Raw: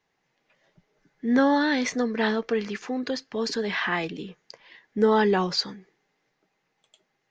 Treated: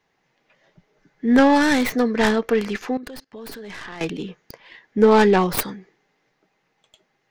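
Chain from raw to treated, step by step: tracing distortion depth 0.38 ms; treble shelf 5.1 kHz -4.5 dB; 2.97–4.01 s: level held to a coarse grid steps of 21 dB; trim +6 dB

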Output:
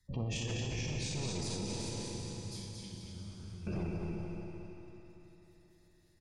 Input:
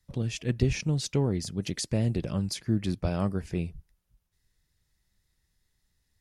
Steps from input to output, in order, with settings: spectral sustain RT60 0.74 s; hard clipper -26 dBFS, distortion -8 dB; compressor with a negative ratio -31 dBFS, ratio -1; feedback delay 229 ms, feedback 53%, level -3.5 dB; spectral gate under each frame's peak -30 dB strong; 1.66–3.67 s: amplifier tone stack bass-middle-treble 6-0-2; band-passed feedback delay 62 ms, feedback 65%, band-pass 900 Hz, level -8.5 dB; Schroeder reverb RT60 4 s, combs from 30 ms, DRR 2.5 dB; peak limiter -26 dBFS, peak gain reduction 10.5 dB; trim -3 dB

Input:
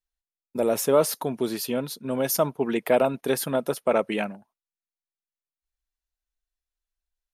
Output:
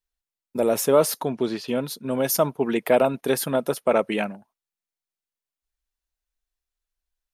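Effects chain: 1.21–1.67 s: low-pass 8.6 kHz -> 3.4 kHz 12 dB/octave; trim +2 dB

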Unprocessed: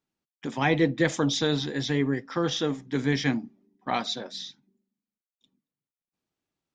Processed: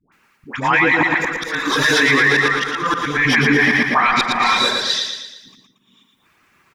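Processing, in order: tracing distortion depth 0.03 ms; gated-style reverb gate 480 ms rising, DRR 4.5 dB; reverb removal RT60 0.75 s; 0.74–2.90 s: tone controls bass -8 dB, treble +3 dB; compression 10:1, threshold -33 dBFS, peak gain reduction 15 dB; phase dispersion highs, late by 123 ms, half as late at 740 Hz; slow attack 697 ms; high-order bell 1.6 kHz +13.5 dB; feedback delay 115 ms, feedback 49%, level -5 dB; loudness maximiser +28.5 dB; trim -4.5 dB

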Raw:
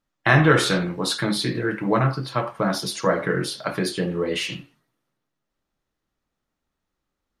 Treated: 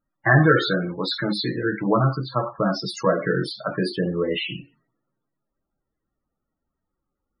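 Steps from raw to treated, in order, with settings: 0.46–1.66 s: bass shelf 170 Hz -5.5 dB; loudest bins only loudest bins 32; trim +1 dB

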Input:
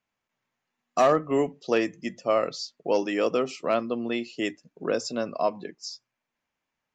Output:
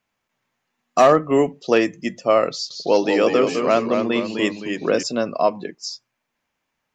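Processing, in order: 2.54–5.03 s: ever faster or slower copies 163 ms, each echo -1 st, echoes 3, each echo -6 dB; trim +7 dB

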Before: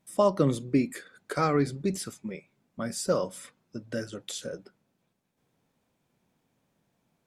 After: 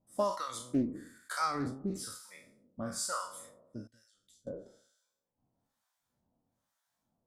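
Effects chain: spectral sustain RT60 1.13 s; reverb removal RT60 0.75 s; 3.87–4.47 s: amplifier tone stack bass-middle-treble 10-0-1; harmonic tremolo 1.1 Hz, depth 100%, crossover 880 Hz; fifteen-band graphic EQ 160 Hz -8 dB, 400 Hz -10 dB, 2.5 kHz -11 dB; loudspeaker Doppler distortion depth 0.24 ms

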